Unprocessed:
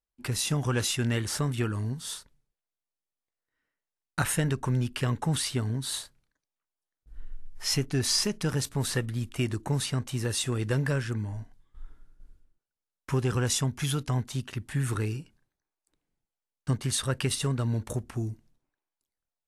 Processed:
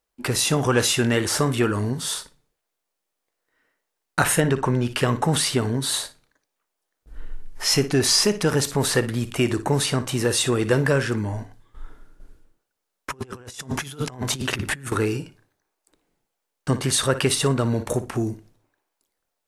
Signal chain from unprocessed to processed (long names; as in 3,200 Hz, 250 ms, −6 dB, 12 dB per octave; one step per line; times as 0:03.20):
drawn EQ curve 110 Hz 0 dB, 460 Hz +11 dB, 3,400 Hz +6 dB
flutter between parallel walls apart 10 metres, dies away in 0.22 s
on a send at −19 dB: convolution reverb RT60 0.40 s, pre-delay 19 ms
0:13.10–0:14.92: on the sum: compressor whose output falls as the input rises −33 dBFS, ratio −0.5
in parallel at −1 dB: brickwall limiter −26 dBFS, peak gain reduction 20.5 dB
0:04.40–0:04.88: on the sum: high-shelf EQ 5,800 Hz −9.5 dB